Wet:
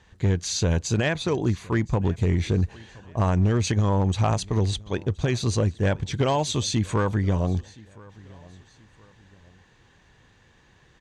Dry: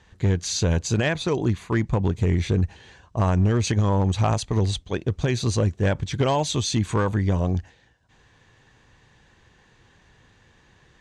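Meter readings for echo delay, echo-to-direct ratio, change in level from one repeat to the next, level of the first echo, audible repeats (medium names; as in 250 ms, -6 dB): 1020 ms, -23.0 dB, -8.5 dB, -23.5 dB, 2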